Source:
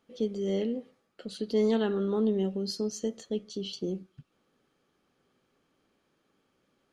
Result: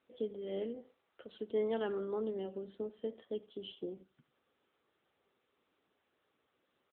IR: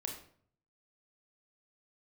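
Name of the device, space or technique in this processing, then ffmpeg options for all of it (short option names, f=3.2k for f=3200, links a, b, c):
telephone: -filter_complex "[0:a]asettb=1/sr,asplit=3[a][b][c];[a]atrim=end=0.744[d];[b]atrim=start=0.74:end=1.36,asetpts=PTS-STARTPTS,afade=t=in:d=0.004:c=qsin,afade=t=out:st=0.616:d=0.004:c=qsin,highpass=f=230:p=1[e];[c]atrim=start=1.356[f];[d][e]acrossfade=d=0.004:c1=hsin:c2=qsin[g];[g][f]acrossfade=d=0.004:c1=qsin:c2=hsin,highpass=340,lowpass=3.3k,bandreject=f=2.5k:w=13,aecho=1:1:88:0.0891,volume=-4dB" -ar 8000 -c:a libopencore_amrnb -b:a 10200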